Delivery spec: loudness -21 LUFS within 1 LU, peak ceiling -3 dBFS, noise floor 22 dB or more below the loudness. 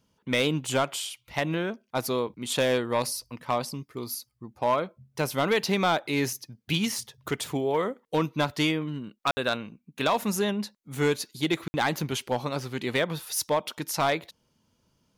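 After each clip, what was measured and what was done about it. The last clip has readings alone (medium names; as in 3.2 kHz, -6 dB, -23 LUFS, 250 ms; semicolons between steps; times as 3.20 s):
clipped samples 0.4%; clipping level -17.0 dBFS; dropouts 2; longest dropout 60 ms; loudness -28.5 LUFS; peak level -17.0 dBFS; loudness target -21.0 LUFS
-> clip repair -17 dBFS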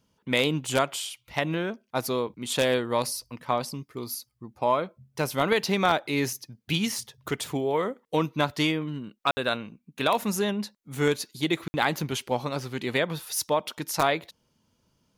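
clipped samples 0.0%; dropouts 2; longest dropout 60 ms
-> interpolate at 9.31/11.68 s, 60 ms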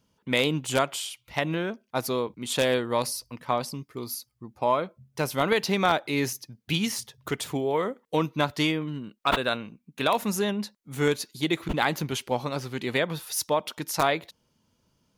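dropouts 0; loudness -28.0 LUFS; peak level -8.0 dBFS; loudness target -21.0 LUFS
-> trim +7 dB; peak limiter -3 dBFS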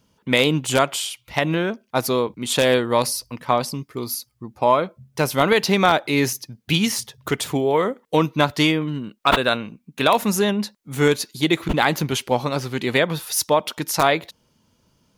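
loudness -21.0 LUFS; peak level -3.0 dBFS; noise floor -65 dBFS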